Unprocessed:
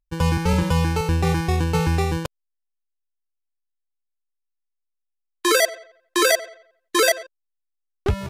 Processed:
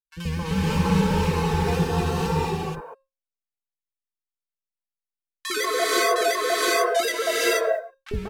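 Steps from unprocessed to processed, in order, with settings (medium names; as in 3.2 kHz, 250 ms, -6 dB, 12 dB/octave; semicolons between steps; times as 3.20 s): three bands offset in time highs, lows, mids 50/190 ms, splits 440/1400 Hz; vibrato 5.7 Hz 85 cents; short-mantissa float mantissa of 4-bit; treble shelf 4 kHz -6.5 dB; feedback comb 540 Hz, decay 0.5 s, mix 50%; 1.36–2.12 s: band-stop 2.2 kHz, Q 5.6; comb 4.5 ms, depth 63%; gate with hold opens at -41 dBFS; gated-style reverb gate 500 ms rising, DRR -6 dB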